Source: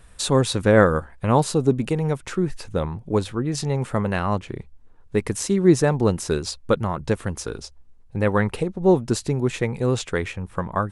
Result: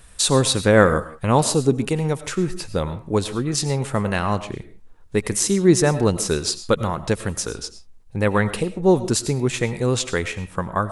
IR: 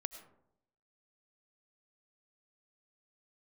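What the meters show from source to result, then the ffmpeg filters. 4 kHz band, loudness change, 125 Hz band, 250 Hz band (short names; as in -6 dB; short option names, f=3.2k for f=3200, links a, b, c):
+6.5 dB, +1.5 dB, +0.5 dB, +1.0 dB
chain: -filter_complex "[0:a]asplit=2[a][b];[1:a]atrim=start_sample=2205,afade=t=out:st=0.24:d=0.01,atrim=end_sample=11025,highshelf=f=2.5k:g=11[c];[b][c]afir=irnorm=-1:irlink=0,volume=6dB[d];[a][d]amix=inputs=2:normalize=0,volume=-7.5dB"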